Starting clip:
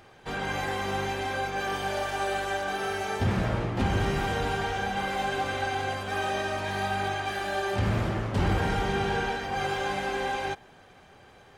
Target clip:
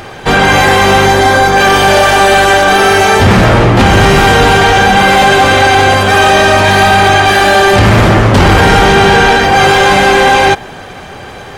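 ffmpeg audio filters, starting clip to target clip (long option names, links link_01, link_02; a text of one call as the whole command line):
ffmpeg -i in.wav -filter_complex "[0:a]asettb=1/sr,asplit=3[link_01][link_02][link_03];[link_01]atrim=end=1.064[link_04];[link_02]atrim=start=1.06:end=1.57,asetpts=PTS-STARTPTS,afade=type=in:duration=0.004:curve=qsin,afade=type=out:start_time=0.506:duration=0.004:curve=qsin,equalizer=frequency=2600:width=3.5:gain=-9.5[link_05];[link_03]atrim=start=1.566[link_06];[link_04][link_05]acrossfade=duration=0.004:curve1=hsin:curve2=qsin[link_07];[link_07][link_06]acrossfade=duration=0.004:curve1=qsin:curve2=hsin,apsyclip=27.5dB,volume=-1.5dB" out.wav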